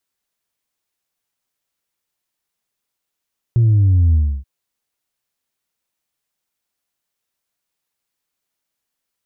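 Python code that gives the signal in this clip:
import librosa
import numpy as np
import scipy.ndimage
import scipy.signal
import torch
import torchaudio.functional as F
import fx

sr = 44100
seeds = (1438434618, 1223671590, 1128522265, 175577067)

y = fx.sub_drop(sr, level_db=-10.0, start_hz=120.0, length_s=0.88, drive_db=1.0, fade_s=0.3, end_hz=65.0)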